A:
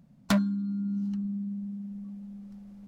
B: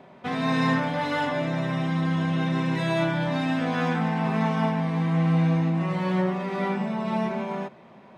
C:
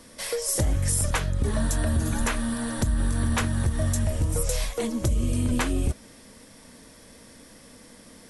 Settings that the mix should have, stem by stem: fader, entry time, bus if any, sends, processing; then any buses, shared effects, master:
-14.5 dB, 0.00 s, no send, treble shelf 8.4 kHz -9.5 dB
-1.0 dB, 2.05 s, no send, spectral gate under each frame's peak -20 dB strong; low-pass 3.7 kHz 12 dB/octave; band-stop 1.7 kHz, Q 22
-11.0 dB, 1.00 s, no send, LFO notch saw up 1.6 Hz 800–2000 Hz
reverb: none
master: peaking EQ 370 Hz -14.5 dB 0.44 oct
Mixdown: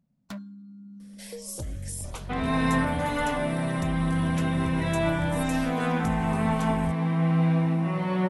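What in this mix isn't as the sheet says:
stem A: missing treble shelf 8.4 kHz -9.5 dB; stem B: missing spectral gate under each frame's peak -20 dB strong; master: missing peaking EQ 370 Hz -14.5 dB 0.44 oct

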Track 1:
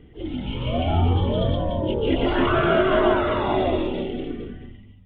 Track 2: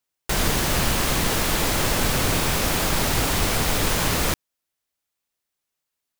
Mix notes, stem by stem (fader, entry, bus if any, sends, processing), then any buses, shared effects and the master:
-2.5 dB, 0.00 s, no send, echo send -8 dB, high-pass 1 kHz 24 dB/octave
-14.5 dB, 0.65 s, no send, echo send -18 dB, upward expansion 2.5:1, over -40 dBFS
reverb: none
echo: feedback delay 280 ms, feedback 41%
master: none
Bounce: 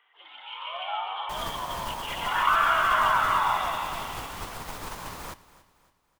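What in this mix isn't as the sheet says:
stem 2: entry 0.65 s -> 1.00 s; master: extra peaking EQ 1 kHz +10.5 dB 0.94 oct

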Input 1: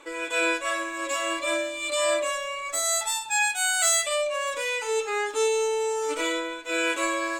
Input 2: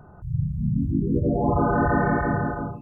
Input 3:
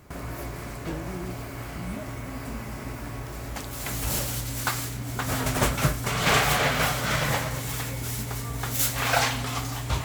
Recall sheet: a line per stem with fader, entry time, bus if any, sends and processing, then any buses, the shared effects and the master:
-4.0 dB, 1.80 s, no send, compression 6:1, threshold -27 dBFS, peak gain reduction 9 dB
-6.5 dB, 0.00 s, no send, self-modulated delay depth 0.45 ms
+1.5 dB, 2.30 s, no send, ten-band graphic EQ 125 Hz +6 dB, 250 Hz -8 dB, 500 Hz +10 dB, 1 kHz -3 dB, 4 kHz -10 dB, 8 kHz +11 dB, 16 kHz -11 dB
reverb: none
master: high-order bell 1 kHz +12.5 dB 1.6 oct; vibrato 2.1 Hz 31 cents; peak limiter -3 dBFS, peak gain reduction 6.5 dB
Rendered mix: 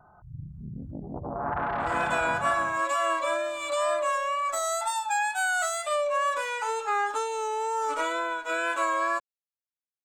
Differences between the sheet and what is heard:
stem 2 -6.5 dB -> -15.0 dB; stem 3: muted

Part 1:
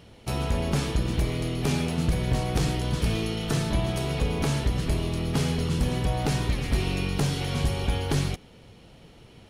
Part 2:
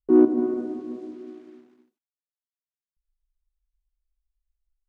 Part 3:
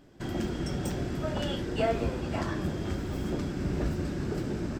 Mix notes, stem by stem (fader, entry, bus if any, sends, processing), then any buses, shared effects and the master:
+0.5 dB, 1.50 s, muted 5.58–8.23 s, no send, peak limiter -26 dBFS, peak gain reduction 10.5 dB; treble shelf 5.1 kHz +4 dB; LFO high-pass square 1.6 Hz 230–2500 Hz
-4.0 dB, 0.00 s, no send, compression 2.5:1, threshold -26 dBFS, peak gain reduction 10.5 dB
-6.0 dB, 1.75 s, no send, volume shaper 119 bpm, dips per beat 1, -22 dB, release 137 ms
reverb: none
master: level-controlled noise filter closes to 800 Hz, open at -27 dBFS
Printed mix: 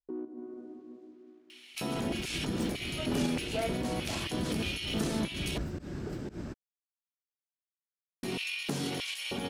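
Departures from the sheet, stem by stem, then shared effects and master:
stem 2 -4.0 dB -> -14.5 dB; master: missing level-controlled noise filter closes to 800 Hz, open at -27 dBFS

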